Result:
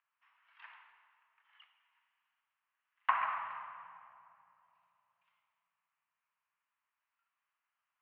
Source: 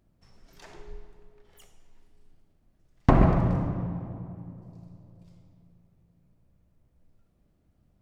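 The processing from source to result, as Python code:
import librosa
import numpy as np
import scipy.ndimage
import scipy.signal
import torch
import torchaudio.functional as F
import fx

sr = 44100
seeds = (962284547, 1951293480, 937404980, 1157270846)

y = scipy.signal.sosfilt(scipy.signal.ellip(3, 1.0, 50, [1000.0, 2900.0], 'bandpass', fs=sr, output='sos'), x)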